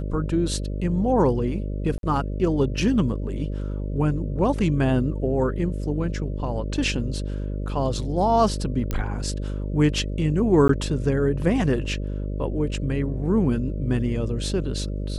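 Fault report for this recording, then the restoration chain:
buzz 50 Hz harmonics 12 -28 dBFS
1.98–2.03 gap 52 ms
8.91 pop -13 dBFS
10.68–10.69 gap 13 ms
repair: de-click; de-hum 50 Hz, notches 12; interpolate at 1.98, 52 ms; interpolate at 10.68, 13 ms

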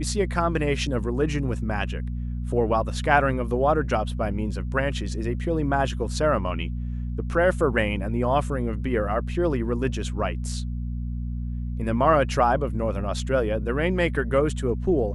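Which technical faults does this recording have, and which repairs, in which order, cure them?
hum 60 Hz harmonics 4 -29 dBFS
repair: de-hum 60 Hz, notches 4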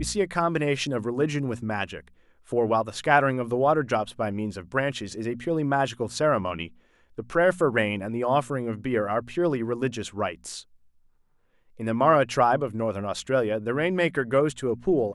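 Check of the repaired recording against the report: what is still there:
none

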